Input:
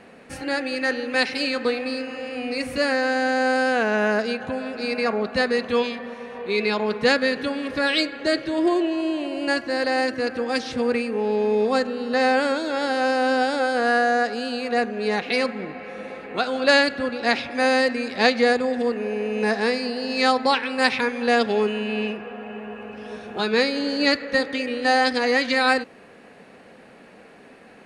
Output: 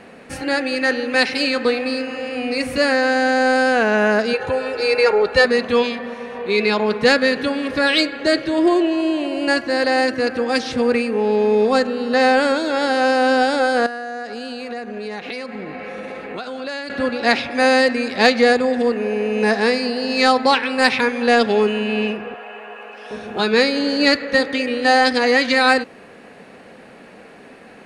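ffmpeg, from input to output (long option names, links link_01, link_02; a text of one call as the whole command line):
ffmpeg -i in.wav -filter_complex "[0:a]asettb=1/sr,asplit=3[link_01][link_02][link_03];[link_01]atrim=end=4.334[link_04];[link_02]atrim=start=4.33:end=5.45,asetpts=PTS-STARTPTS,afade=type=in:duration=0.004:curve=qsin,afade=type=out:start_time=1.116:duration=0.004:curve=qsin,aecho=1:1:2.2:0.91,atrim=end_sample=49392[link_05];[link_03]atrim=start=5.446[link_06];[link_04][link_05]acrossfade=duration=0.004:curve1=hsin:curve2=qsin[link_07];[link_07][link_06]acrossfade=duration=0.004:curve1=qsin:curve2=hsin,asettb=1/sr,asplit=3[link_08][link_09][link_10];[link_08]atrim=end=13.864[link_11];[link_09]atrim=start=13.86:end=16.9,asetpts=PTS-STARTPTS,afade=type=in:duration=0.004:curve=qsin,afade=type=out:start_time=3.036:duration=0.004:curve=qsin,acompressor=threshold=-31dB:ratio=6:attack=3.2:release=140:knee=1:detection=peak[link_12];[link_10]atrim=start=16.896[link_13];[link_11][link_12]acrossfade=duration=0.004:curve1=hsin:curve2=qsin[link_14];[link_14][link_13]acrossfade=duration=0.004:curve1=qsin:curve2=hsin,asettb=1/sr,asplit=3[link_15][link_16][link_17];[link_15]atrim=end=22.344[link_18];[link_16]atrim=start=22.34:end=23.11,asetpts=PTS-STARTPTS,afade=type=in:duration=0.004:curve=qsin,afade=type=out:start_time=0.766:duration=0.004:curve=qsin,highpass=620[link_19];[link_17]atrim=start=23.106[link_20];[link_18][link_19]acrossfade=duration=0.004:curve1=hsin:curve2=qsin[link_21];[link_21][link_20]acrossfade=duration=0.004:curve1=qsin:curve2=hsin,acontrast=30" out.wav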